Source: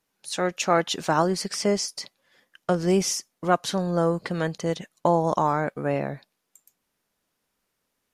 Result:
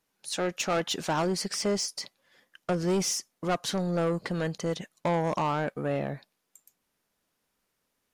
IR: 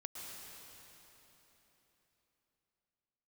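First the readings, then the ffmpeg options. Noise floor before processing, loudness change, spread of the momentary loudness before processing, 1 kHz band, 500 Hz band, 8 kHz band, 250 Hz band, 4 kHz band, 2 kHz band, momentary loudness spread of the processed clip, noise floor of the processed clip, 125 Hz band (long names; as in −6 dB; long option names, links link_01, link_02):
−78 dBFS, −4.5 dB, 9 LU, −6.5 dB, −5.0 dB, −2.5 dB, −4.0 dB, −2.0 dB, −4.0 dB, 7 LU, −79 dBFS, −3.5 dB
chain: -af "asoftclip=type=tanh:threshold=-20.5dB,volume=-1dB"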